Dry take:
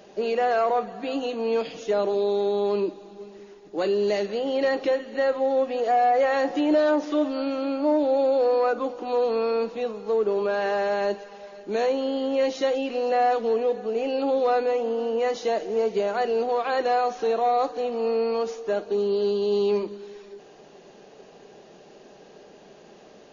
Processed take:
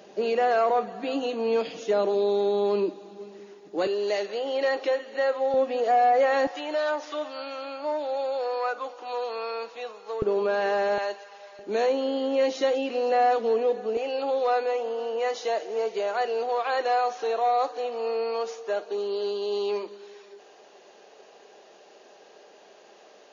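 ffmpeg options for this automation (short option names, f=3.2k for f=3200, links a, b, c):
-af "asetnsamples=n=441:p=0,asendcmd='3.87 highpass f 460;5.54 highpass f 220;6.47 highpass f 790;10.22 highpass f 200;10.98 highpass f 710;11.59 highpass f 230;13.97 highpass f 500',highpass=160"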